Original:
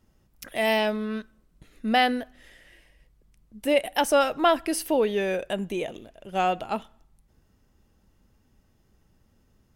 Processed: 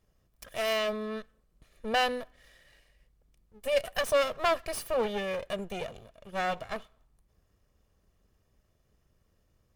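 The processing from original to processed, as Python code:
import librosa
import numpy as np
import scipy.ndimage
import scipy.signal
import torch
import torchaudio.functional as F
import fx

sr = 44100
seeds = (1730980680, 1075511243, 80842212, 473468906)

y = fx.lower_of_two(x, sr, delay_ms=1.7)
y = y * librosa.db_to_amplitude(-5.0)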